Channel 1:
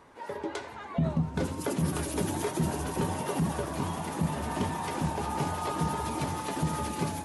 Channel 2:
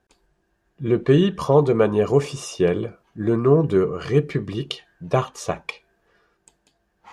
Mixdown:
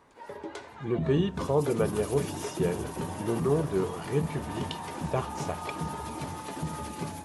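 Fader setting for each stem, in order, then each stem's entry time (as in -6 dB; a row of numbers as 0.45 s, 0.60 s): -4.5 dB, -10.0 dB; 0.00 s, 0.00 s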